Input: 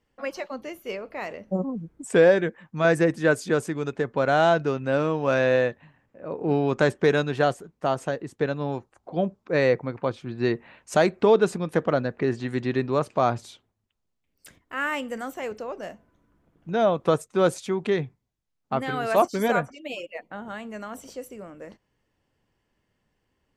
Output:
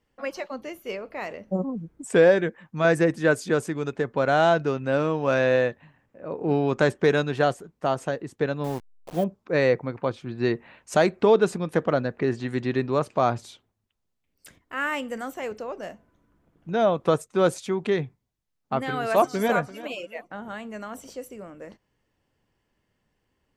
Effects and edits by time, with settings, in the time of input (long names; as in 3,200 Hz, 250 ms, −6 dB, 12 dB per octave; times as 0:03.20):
0:08.64–0:09.24: hold until the input has moved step −37 dBFS
0:18.89–0:19.53: delay throw 340 ms, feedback 30%, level −17 dB